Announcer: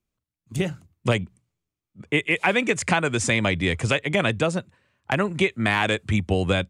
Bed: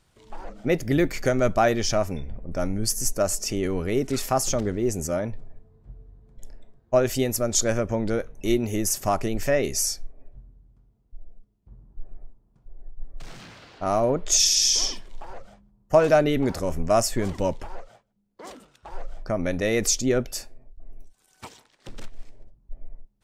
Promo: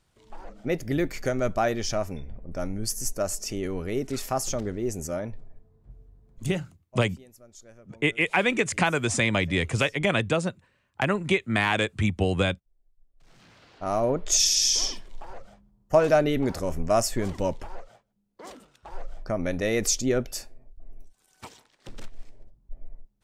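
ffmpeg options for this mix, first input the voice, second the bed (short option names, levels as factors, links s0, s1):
-filter_complex "[0:a]adelay=5900,volume=0.794[s0];[1:a]volume=11.2,afade=t=out:st=6.39:d=0.21:silence=0.0707946,afade=t=in:st=13.16:d=0.91:silence=0.0530884[s1];[s0][s1]amix=inputs=2:normalize=0"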